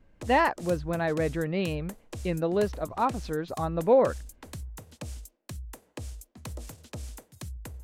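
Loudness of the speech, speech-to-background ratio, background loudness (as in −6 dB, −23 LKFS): −27.5 LKFS, 15.0 dB, −42.5 LKFS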